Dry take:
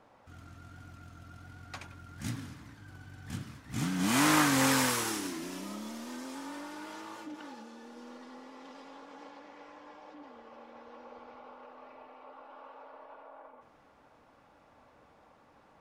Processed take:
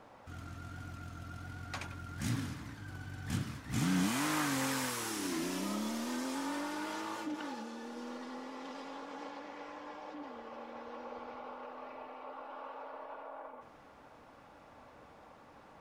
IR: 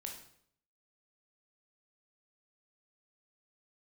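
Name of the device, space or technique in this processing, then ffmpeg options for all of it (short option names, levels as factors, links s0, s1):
de-esser from a sidechain: -filter_complex "[0:a]asplit=2[s0][s1];[s1]highpass=f=5800:p=1,apad=whole_len=696972[s2];[s0][s2]sidechaincompress=threshold=0.00501:ratio=4:attack=1.8:release=57,volume=1.68"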